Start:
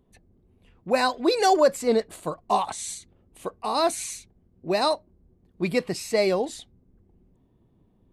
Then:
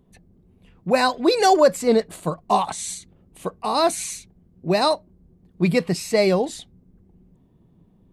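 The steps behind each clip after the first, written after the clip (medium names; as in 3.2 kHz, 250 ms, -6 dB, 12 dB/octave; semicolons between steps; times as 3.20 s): peaking EQ 170 Hz +8.5 dB 0.44 oct; trim +3.5 dB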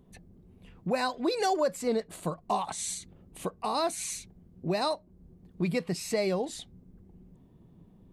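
compression 2:1, threshold -34 dBFS, peak gain reduction 13 dB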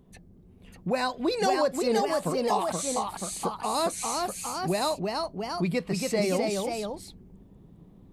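ever faster or slower copies 603 ms, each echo +1 st, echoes 2; trim +1.5 dB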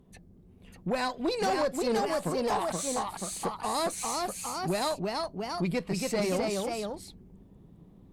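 valve stage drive 21 dB, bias 0.45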